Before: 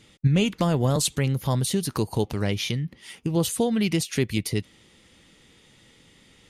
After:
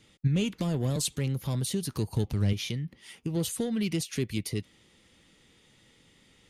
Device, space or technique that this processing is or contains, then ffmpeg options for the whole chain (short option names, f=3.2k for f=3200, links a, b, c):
one-band saturation: -filter_complex "[0:a]acrossover=split=470|2600[a][b][c];[b]asoftclip=type=tanh:threshold=-35dB[d];[a][d][c]amix=inputs=3:normalize=0,asettb=1/sr,asplit=3[e][f][g];[e]atrim=end=1.784[h];[f]atrim=start=1.78:end=2.53,asetpts=PTS-STARTPTS,afade=t=in:d=0.004:c=qsin,afade=t=out:st=0.746:d=0.004:c=qsin,asubboost=boost=9.5:cutoff=220[i];[g]atrim=start=2.526[j];[h][i]acrossfade=d=0.004:c1=hsin:c2=qsin[k];[k][j]acrossfade=d=0.004:c1=qsin:c2=hsin,volume=-5.5dB"